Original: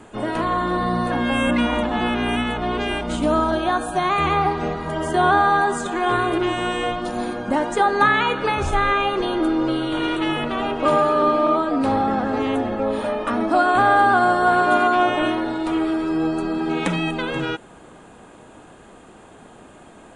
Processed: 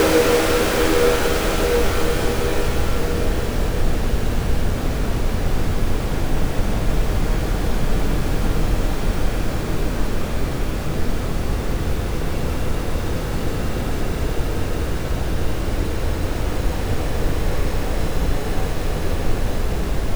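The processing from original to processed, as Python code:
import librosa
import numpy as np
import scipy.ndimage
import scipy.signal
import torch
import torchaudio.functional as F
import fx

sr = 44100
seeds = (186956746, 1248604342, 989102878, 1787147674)

y = scipy.signal.sosfilt(scipy.signal.ellip(4, 1.0, 40, 260.0, 'highpass', fs=sr, output='sos'), x)
y = fx.over_compress(y, sr, threshold_db=-24.0, ratio=-0.5)
y = fx.graphic_eq(y, sr, hz=(500, 4000, 8000), db=(12, -5, 11))
y = fx.schmitt(y, sr, flips_db=-28.0)
y = fx.paulstretch(y, sr, seeds[0], factor=8.5, window_s=1.0, from_s=17.45)
y = y * 10.0 ** (3.5 / 20.0)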